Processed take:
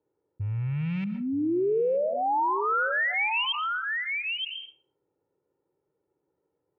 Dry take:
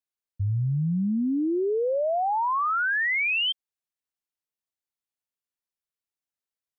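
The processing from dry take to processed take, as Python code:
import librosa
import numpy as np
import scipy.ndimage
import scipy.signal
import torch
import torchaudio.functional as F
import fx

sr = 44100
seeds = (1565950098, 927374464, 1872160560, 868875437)

y = fx.rattle_buzz(x, sr, strikes_db=-30.0, level_db=-35.0)
y = scipy.signal.sosfilt(scipy.signal.butter(2, 240.0, 'highpass', fs=sr, output='sos'), y)
y = fx.env_lowpass(y, sr, base_hz=310.0, full_db=-25.5)
y = fx.lowpass(y, sr, hz=1700.0, slope=6)
y = y + 0.95 * np.pad(y, (int(2.2 * sr / 1000.0), 0))[:len(y)]
y = fx.wow_flutter(y, sr, seeds[0], rate_hz=2.1, depth_cents=18.0)
y = y + 10.0 ** (-13.0 / 20.0) * np.pad(y, (int(925 * sr / 1000.0), 0))[:len(y)]
y = fx.rev_plate(y, sr, seeds[1], rt60_s=0.57, hf_ratio=0.55, predelay_ms=100, drr_db=16.0)
y = fx.env_flatten(y, sr, amount_pct=70)
y = y * librosa.db_to_amplitude(-5.0)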